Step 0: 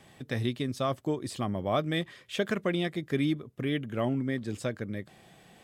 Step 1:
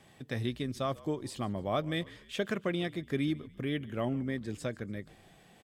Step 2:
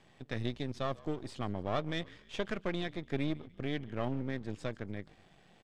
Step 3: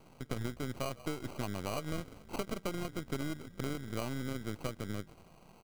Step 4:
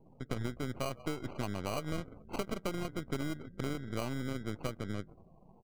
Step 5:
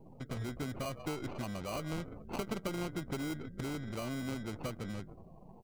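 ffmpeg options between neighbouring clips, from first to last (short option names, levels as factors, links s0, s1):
-filter_complex "[0:a]asplit=4[s0][s1][s2][s3];[s1]adelay=145,afreqshift=-55,volume=0.0891[s4];[s2]adelay=290,afreqshift=-110,volume=0.0427[s5];[s3]adelay=435,afreqshift=-165,volume=0.0204[s6];[s0][s4][s5][s6]amix=inputs=4:normalize=0,volume=0.668"
-af "aeval=exprs='if(lt(val(0),0),0.251*val(0),val(0))':c=same,lowpass=6000"
-af "acrusher=samples=25:mix=1:aa=0.000001,acompressor=threshold=0.0158:ratio=6,volume=1.58"
-af "afftdn=nr=28:nf=-56,volume=1.12"
-af "aeval=exprs='(tanh(63.1*val(0)+0.75)-tanh(0.75))/63.1':c=same,volume=3.35"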